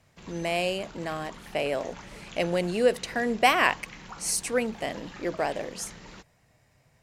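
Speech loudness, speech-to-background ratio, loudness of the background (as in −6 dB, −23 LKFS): −28.0 LKFS, 17.5 dB, −45.5 LKFS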